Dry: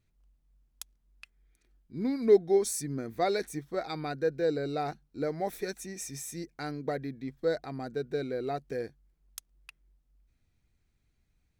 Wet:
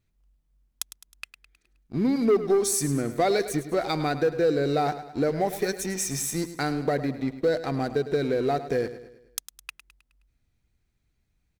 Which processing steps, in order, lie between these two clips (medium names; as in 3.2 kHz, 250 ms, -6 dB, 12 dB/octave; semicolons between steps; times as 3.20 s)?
waveshaping leveller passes 2; compression 2:1, threshold -28 dBFS, peak gain reduction 8 dB; feedback delay 105 ms, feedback 48%, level -13 dB; trim +4 dB